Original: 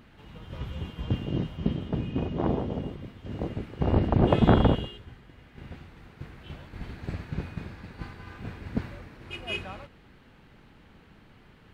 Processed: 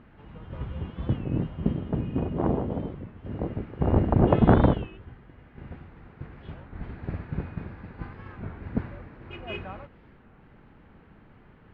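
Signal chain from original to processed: low-pass 1.8 kHz 12 dB/octave; warped record 33 1/3 rpm, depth 160 cents; trim +1.5 dB

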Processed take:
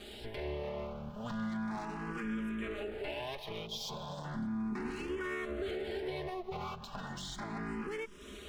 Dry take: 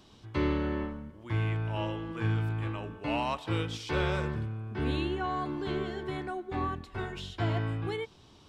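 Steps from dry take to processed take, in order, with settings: comb filter that takes the minimum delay 4.9 ms; compression 10:1, threshold -47 dBFS, peak gain reduction 20 dB; peak limiter -42.5 dBFS, peak gain reduction 9 dB; time-frequency box 3.66–4.24 s, 1.1–3.1 kHz -12 dB; barber-pole phaser +0.35 Hz; trim +14.5 dB

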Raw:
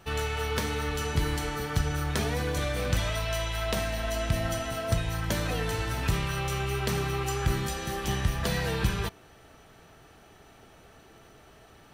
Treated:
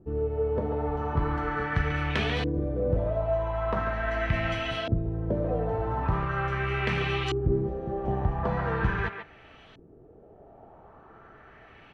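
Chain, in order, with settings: speakerphone echo 140 ms, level -7 dB; LFO low-pass saw up 0.41 Hz 320–3500 Hz

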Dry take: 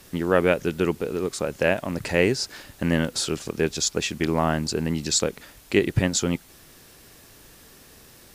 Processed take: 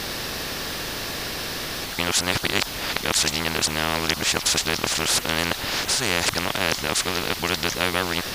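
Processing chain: reverse the whole clip; resonant high shelf 6.1 kHz -7 dB, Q 1.5; spectrum-flattening compressor 4:1; trim +2 dB

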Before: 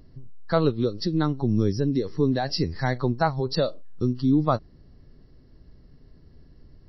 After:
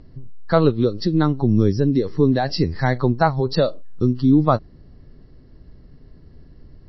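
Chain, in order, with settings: distance through air 110 m; trim +6 dB

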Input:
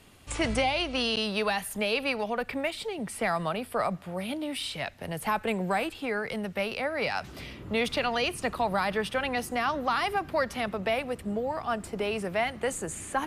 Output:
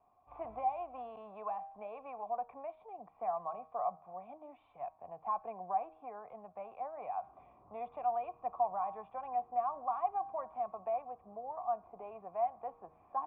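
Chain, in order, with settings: cascade formant filter a; de-hum 158 Hz, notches 10; trim +1.5 dB

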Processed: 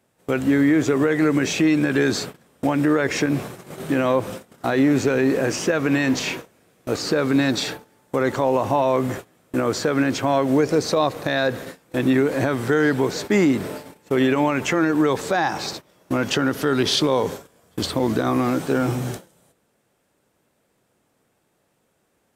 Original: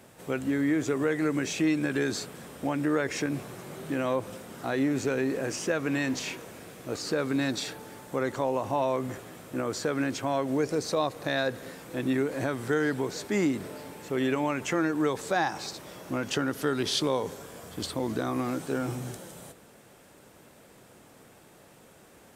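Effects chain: gate -40 dBFS, range -23 dB; dynamic bell 9.3 kHz, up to -6 dB, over -54 dBFS, Q 0.92; loudness maximiser +18.5 dB; trim -8.5 dB

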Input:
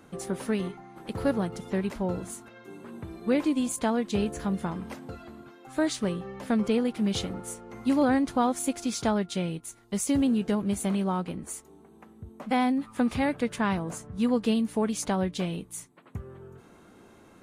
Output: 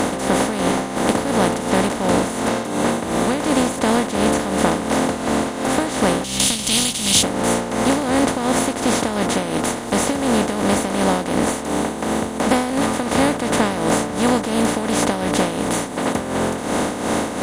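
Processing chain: spectral levelling over time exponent 0.2; 6.24–7.23 s: FFT filter 150 Hz 0 dB, 390 Hz -12 dB, 1.7 kHz -8 dB, 3.1 kHz +11 dB; tremolo 2.8 Hz, depth 62%; trim +2.5 dB

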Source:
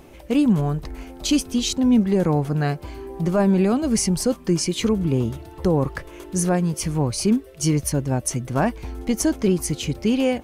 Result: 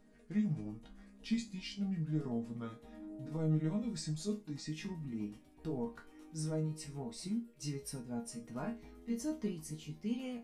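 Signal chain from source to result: pitch bend over the whole clip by -5.5 st ending unshifted; peaking EQ 250 Hz +5.5 dB 0.67 oct; chord resonator D#3 sus4, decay 0.26 s; trim -5 dB

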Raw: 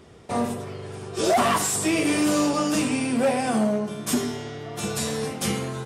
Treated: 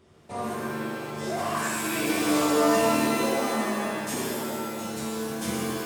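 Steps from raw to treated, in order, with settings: random-step tremolo 2.6 Hz; pitch-shifted reverb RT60 1.9 s, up +7 st, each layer -2 dB, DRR -2.5 dB; trim -8 dB

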